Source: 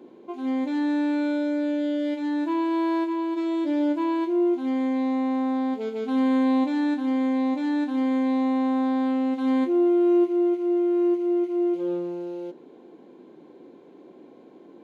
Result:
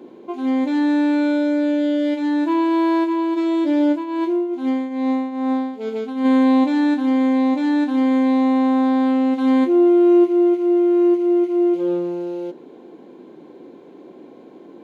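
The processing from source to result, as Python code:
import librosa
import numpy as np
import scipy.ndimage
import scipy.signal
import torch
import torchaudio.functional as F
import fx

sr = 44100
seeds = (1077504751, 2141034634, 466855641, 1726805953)

y = fx.tremolo_shape(x, sr, shape='triangle', hz=2.4, depth_pct=75, at=(3.95, 6.24), fade=0.02)
y = F.gain(torch.from_numpy(y), 6.5).numpy()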